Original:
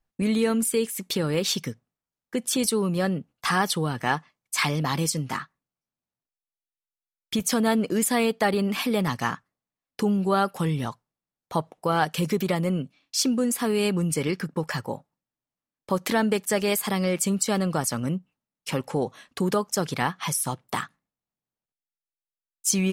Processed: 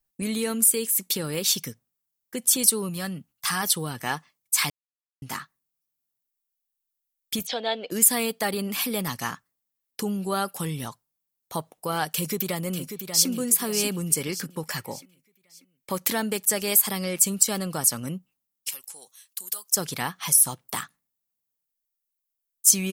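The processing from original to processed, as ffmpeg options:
-filter_complex "[0:a]asettb=1/sr,asplit=3[a][b][c];[a]atrim=end=2.894[d];[b]atrim=start=2.89:end=3.63,asetpts=PTS-STARTPTS,afade=t=in:d=0.004:c=qsin,afade=t=out:st=0.736:d=0.004:c=qsin,equalizer=f=460:w=1.5:g=-10[e];[c]atrim=start=3.626[f];[d][e]acrossfade=d=0.004:c1=hsin:c2=qsin[g];[g][f]acrossfade=d=0.004:c1=qsin:c2=hsin,asplit=3[h][i][j];[h]afade=t=out:st=7.45:d=0.02[k];[i]highpass=490,equalizer=f=510:t=q:w=4:g=6,equalizer=f=730:t=q:w=4:g=7,equalizer=f=1.2k:t=q:w=4:g=-10,equalizer=f=3.6k:t=q:w=4:g=10,lowpass=f=4k:w=0.5412,lowpass=f=4k:w=1.3066,afade=t=in:st=7.45:d=0.02,afade=t=out:st=7.9:d=0.02[l];[j]afade=t=in:st=7.9:d=0.02[m];[k][l][m]amix=inputs=3:normalize=0,asplit=2[n][o];[o]afade=t=in:st=12.14:d=0.01,afade=t=out:st=13.28:d=0.01,aecho=0:1:590|1180|1770|2360|2950:0.398107|0.159243|0.0636971|0.0254789|0.0101915[p];[n][p]amix=inputs=2:normalize=0,asettb=1/sr,asplit=3[q][r][s];[q]atrim=end=14.764[t];[r]atrim=start=14.76:end=16.03,asetpts=PTS-STARTPTS,afade=t=in:d=0.004:c=qsin,afade=t=out:st=1.266:d=0.004:c=qsin,equalizer=f=2.2k:t=o:w=0.65:g=10.5[u];[s]atrim=start=16.026[v];[t][u]acrossfade=d=0.004:c1=hsin:c2=qsin[w];[w][v]acrossfade=d=0.004:c1=qsin:c2=hsin,asettb=1/sr,asplit=3[x][y][z];[x]atrim=end=18.694[aa];[y]atrim=start=18.69:end=19.73,asetpts=PTS-STARTPTS,afade=t=in:d=0.004:c=qsin,afade=t=out:st=1.036:d=0.004:c=qsin,aderivative[ab];[z]atrim=start=19.726[ac];[aa][ab]acrossfade=d=0.004:c1=hsin:c2=qsin[ad];[ad][ac]acrossfade=d=0.004:c1=qsin:c2=hsin,asplit=3[ae][af][ag];[ae]atrim=end=4.7,asetpts=PTS-STARTPTS,afade=t=out:st=4.696:d=0.004:c=hsin[ah];[af]atrim=start=4.7:end=5.22,asetpts=PTS-STARTPTS,volume=0[ai];[ag]atrim=start=5.22,asetpts=PTS-STARTPTS,afade=t=in:d=0.004:c=hsin[aj];[ah][ai][aj]concat=n=3:v=0:a=1,aemphasis=mode=production:type=75fm,volume=-4.5dB"

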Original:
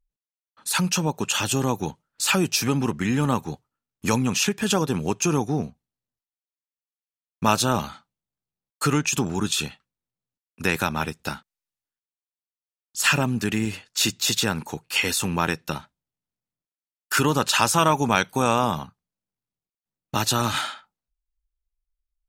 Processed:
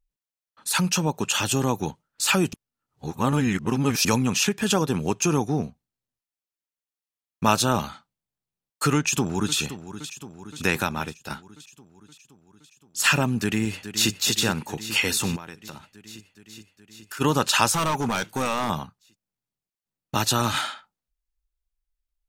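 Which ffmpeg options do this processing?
-filter_complex "[0:a]asplit=2[a][b];[b]afade=t=in:st=8.96:d=0.01,afade=t=out:st=9.57:d=0.01,aecho=0:1:520|1040|1560|2080|2600|3120|3640|4160:0.237137|0.154139|0.100191|0.0651239|0.0423305|0.0275148|0.0178846|0.011625[c];[a][c]amix=inputs=2:normalize=0,asplit=2[d][e];[e]afade=t=in:st=13.4:d=0.01,afade=t=out:st=14.11:d=0.01,aecho=0:1:420|840|1260|1680|2100|2520|2940|3360|3780|4200|4620|5040:0.266073|0.199554|0.149666|0.112249|0.084187|0.0631403|0.0473552|0.0355164|0.0266373|0.019978|0.0149835|0.0112376[f];[d][f]amix=inputs=2:normalize=0,asplit=3[g][h][i];[g]afade=t=out:st=15.35:d=0.02[j];[h]acompressor=threshold=-36dB:ratio=5:attack=3.2:release=140:knee=1:detection=peak,afade=t=in:st=15.35:d=0.02,afade=t=out:st=17.2:d=0.02[k];[i]afade=t=in:st=17.2:d=0.02[l];[j][k][l]amix=inputs=3:normalize=0,asettb=1/sr,asplit=3[m][n][o];[m]atrim=end=17.724[p];[n]atrim=start=17.72:end=18.7,asetpts=PTS-STARTPTS,afade=t=in:d=0.004:c=qsin,afade=t=out:st=0.976:d=0.004:c=qsin,asoftclip=type=hard:threshold=-20.5dB[q];[o]atrim=start=18.696[r];[p][q]acrossfade=d=0.004:c1=hsin:c2=qsin[s];[s][r]acrossfade=d=0.004:c1=qsin:c2=hsin,asplit=4[t][u][v][w];[t]atrim=end=2.532[x];[u]atrim=start=2.528:end=4.052,asetpts=PTS-STARTPTS,areverse[y];[v]atrim=start=4.048:end=11.3,asetpts=PTS-STARTPTS,afade=t=out:st=6.662:d=0.59:silence=0.375837[z];[w]atrim=start=11.3,asetpts=PTS-STARTPTS,afade=t=in:d=0.004:c=hsin:silence=0.375837[aa];[x][y]acrossfade=d=0.004:c1=hsin:c2=hsin[ab];[z][aa]concat=n=2:v=0:a=1[ac];[ab][ac]acrossfade=d=0.004:c1=hsin:c2=hsin"

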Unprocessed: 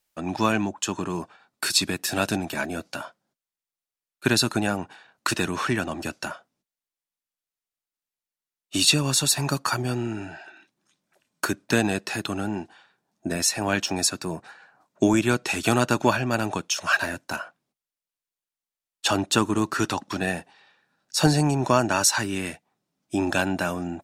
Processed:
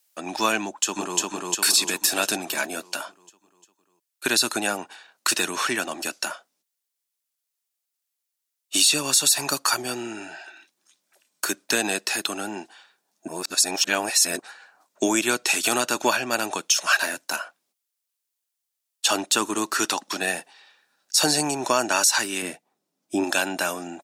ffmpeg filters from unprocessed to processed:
-filter_complex "[0:a]asplit=2[a][b];[b]afade=t=in:st=0.61:d=0.01,afade=t=out:st=1.19:d=0.01,aecho=0:1:350|700|1050|1400|1750|2100|2450|2800:0.891251|0.490188|0.269603|0.148282|0.081555|0.0448553|0.0246704|0.0135687[c];[a][c]amix=inputs=2:normalize=0,asettb=1/sr,asplit=3[d][e][f];[d]atrim=end=22.424[g];[e]atrim=start=22.42:end=23.24,asetpts=PTS-STARTPTS,afade=t=in:d=0.004:c=qsin,afade=t=out:st=0.816:d=0.004:c=qsin,tiltshelf=f=830:g=6.5[h];[f]atrim=start=23.236[i];[g][h]acrossfade=d=0.004:c1=hsin:c2=qsin[j];[j][i]acrossfade=d=0.004:c1=qsin:c2=hsin,asplit=3[k][l][m];[k]atrim=end=13.282[n];[l]atrim=start=13.278:end=14.392,asetpts=PTS-STARTPTS,areverse[o];[m]atrim=start=14.388[p];[n][o]acrossfade=d=0.004:c1=hsin:c2=hsin[q];[q][p]acrossfade=d=0.004:c1=hsin:c2=hsin,highpass=330,highshelf=f=3.3k:g=11.5,alimiter=level_in=6.5dB:limit=-1dB:release=50:level=0:latency=1,volume=-6.5dB"

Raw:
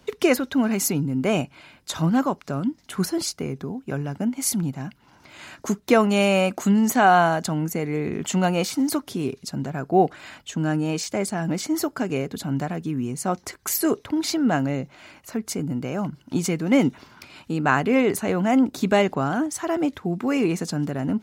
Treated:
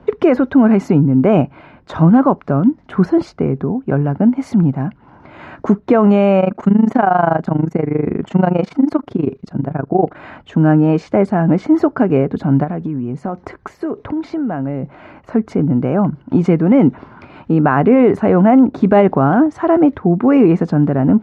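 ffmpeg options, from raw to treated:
-filter_complex "[0:a]asplit=3[a][b][c];[a]afade=t=out:st=6.39:d=0.02[d];[b]tremolo=f=25:d=0.889,afade=t=in:st=6.39:d=0.02,afade=t=out:st=10.15:d=0.02[e];[c]afade=t=in:st=10.15:d=0.02[f];[d][e][f]amix=inputs=3:normalize=0,asplit=3[g][h][i];[g]afade=t=out:st=12.63:d=0.02[j];[h]acompressor=threshold=-30dB:ratio=6:attack=3.2:release=140:knee=1:detection=peak,afade=t=in:st=12.63:d=0.02,afade=t=out:st=14.82:d=0.02[k];[i]afade=t=in:st=14.82:d=0.02[l];[j][k][l]amix=inputs=3:normalize=0,lowpass=1.2k,alimiter=level_in=14dB:limit=-1dB:release=50:level=0:latency=1,volume=-1.5dB"

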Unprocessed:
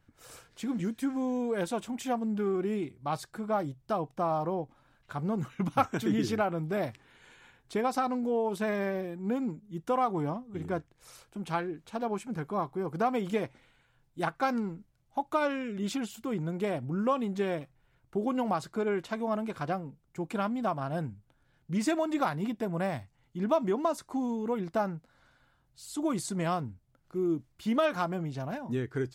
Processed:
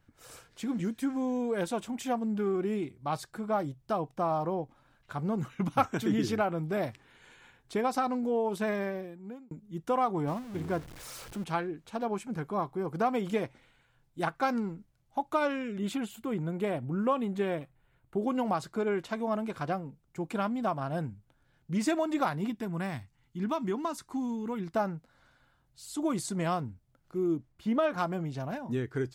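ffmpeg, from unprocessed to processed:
-filter_complex "[0:a]asettb=1/sr,asplit=3[a][b][c];[a]atrim=end=10.274[d];[b]atrim=start=10.27:end=11.44,asetpts=PTS-STARTPTS,afade=t=in:d=0.004:c=qsin,afade=t=out:st=1.166:d=0.004:c=qsin,aeval=exprs='val(0)+0.5*0.00794*sgn(val(0))':c=same[e];[c]atrim=start=11.436[f];[d][e]acrossfade=d=0.004:c1=hsin:c2=qsin[g];[g][f]acrossfade=d=0.004:c1=qsin:c2=hsin,asettb=1/sr,asplit=3[h][i][j];[h]atrim=end=15.784[k];[i]atrim=start=15.78:end=18.22,asetpts=PTS-STARTPTS,afade=t=in:d=0.004:c=qsin,afade=t=out:st=2.436:d=0.004:c=qsin,equalizer=f=5.5k:w=2.3:g=-9.5[l];[j]atrim=start=18.216[m];[k][l]acrossfade=d=0.004:c1=hsin:c2=qsin[n];[n][m]acrossfade=d=0.004:c1=qsin:c2=hsin,asettb=1/sr,asplit=3[o][p][q];[o]atrim=end=22.504[r];[p]atrim=start=22.5:end=24.76,asetpts=PTS-STARTPTS,afade=t=in:d=0.004:c=qsin,afade=t=out:st=2.256:d=0.004:c=qsin,equalizer=f=580:w=1.6:g=-10[s];[q]atrim=start=24.756[t];[r][s]acrossfade=d=0.004:c1=hsin:c2=qsin[u];[u][t]acrossfade=d=0.004:c1=qsin:c2=hsin,asettb=1/sr,asplit=3[v][w][x];[v]atrim=end=27.374[y];[w]atrim=start=27.37:end=27.98,asetpts=PTS-STARTPTS,afade=t=in:d=0.004:c=qsin,afade=t=out:st=0.606:d=0.004:c=qsin,highshelf=f=2.6k:g=-10[z];[x]atrim=start=27.976[aa];[y][z]acrossfade=d=0.004:c1=hsin:c2=qsin[ab];[ab][aa]acrossfade=d=0.004:c1=qsin:c2=hsin,asplit=2[ac][ad];[ac]atrim=end=9.51,asetpts=PTS-STARTPTS,afade=t=out:st=8.69:d=0.82[ae];[ad]atrim=start=9.51,asetpts=PTS-STARTPTS,afade=t=in:d=0.004:c=hsin[af];[ae][af]concat=n=2:v=0:a=1"

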